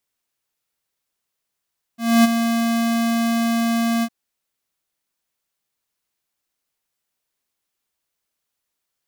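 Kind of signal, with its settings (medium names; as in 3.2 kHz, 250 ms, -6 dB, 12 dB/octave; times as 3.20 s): ADSR square 231 Hz, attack 262 ms, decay 21 ms, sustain -8.5 dB, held 2.05 s, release 57 ms -11 dBFS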